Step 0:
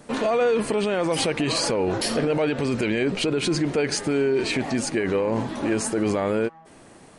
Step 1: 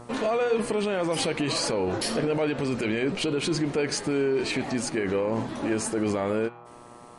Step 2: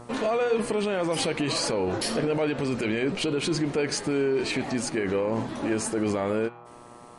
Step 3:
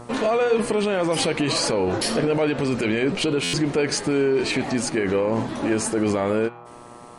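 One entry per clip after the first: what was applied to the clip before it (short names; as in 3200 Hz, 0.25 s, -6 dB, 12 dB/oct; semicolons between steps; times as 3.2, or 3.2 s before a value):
buzz 120 Hz, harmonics 11, -40 dBFS -3 dB/oct; de-hum 120.3 Hz, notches 37; gain -3 dB
nothing audible
stuck buffer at 3.43, samples 512, times 8; gain +4.5 dB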